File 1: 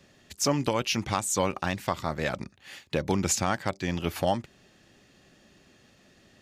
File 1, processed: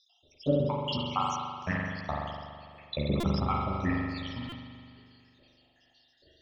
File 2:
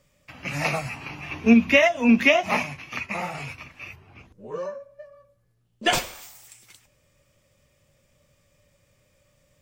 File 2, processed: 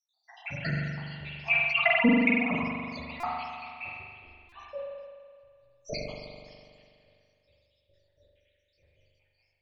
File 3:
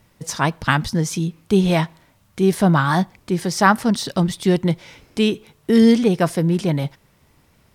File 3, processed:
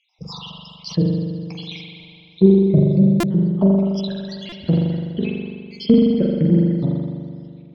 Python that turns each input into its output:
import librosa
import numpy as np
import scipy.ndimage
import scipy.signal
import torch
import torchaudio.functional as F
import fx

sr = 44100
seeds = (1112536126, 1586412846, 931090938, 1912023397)

y = fx.spec_dropout(x, sr, seeds[0], share_pct=82)
y = scipy.signal.sosfilt(scipy.signal.butter(8, 5000.0, 'lowpass', fs=sr, output='sos'), y)
y = fx.dynamic_eq(y, sr, hz=190.0, q=1.4, threshold_db=-33.0, ratio=4.0, max_db=4)
y = fx.env_lowpass_down(y, sr, base_hz=670.0, full_db=-18.0)
y = fx.env_phaser(y, sr, low_hz=200.0, high_hz=2000.0, full_db=-20.0)
y = fx.transient(y, sr, attack_db=1, sustain_db=-4)
y = fx.chorus_voices(y, sr, voices=4, hz=0.39, base_ms=13, depth_ms=2.7, mix_pct=30)
y = fx.high_shelf(y, sr, hz=3000.0, db=9.5)
y = fx.rev_spring(y, sr, rt60_s=2.3, pass_ms=(41,), chirp_ms=30, drr_db=-1.0)
y = fx.buffer_glitch(y, sr, at_s=(3.2, 4.49), block=128, repeats=10)
y = fx.sustainer(y, sr, db_per_s=36.0)
y = F.gain(torch.from_numpy(y), 2.5).numpy()